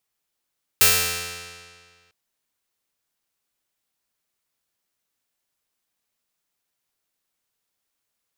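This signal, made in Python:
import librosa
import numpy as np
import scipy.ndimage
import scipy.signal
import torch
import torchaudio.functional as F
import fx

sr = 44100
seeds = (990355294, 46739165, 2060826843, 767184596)

y = fx.pluck(sr, length_s=1.3, note=41, decay_s=1.87, pick=0.31, brightness='bright')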